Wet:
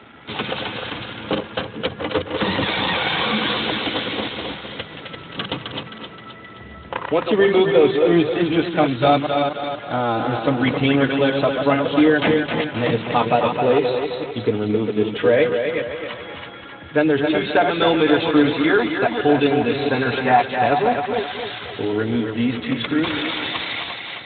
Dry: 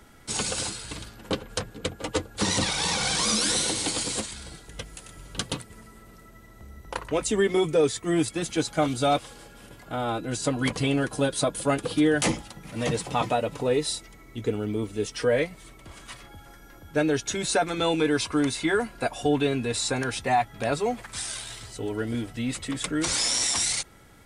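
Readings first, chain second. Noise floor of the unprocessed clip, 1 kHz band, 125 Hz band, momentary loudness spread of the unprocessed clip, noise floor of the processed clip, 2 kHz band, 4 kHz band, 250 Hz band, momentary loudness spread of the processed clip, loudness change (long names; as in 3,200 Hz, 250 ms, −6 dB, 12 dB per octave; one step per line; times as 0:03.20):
−50 dBFS, +9.0 dB, +5.0 dB, 14 LU, −38 dBFS, +9.0 dB, +4.5 dB, +8.0 dB, 14 LU, +6.5 dB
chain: delay that plays each chunk backwards 226 ms, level −6 dB
low-shelf EQ 230 Hz −3 dB
in parallel at −1 dB: downward compressor 6 to 1, threshold −36 dBFS, peak gain reduction 18 dB
on the sum: bit reduction 8 bits
mains-hum notches 50/100/150/200 Hz
feedback echo with a high-pass in the loop 263 ms, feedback 49%, high-pass 240 Hz, level −5.5 dB
level +5.5 dB
Speex 15 kbit/s 8,000 Hz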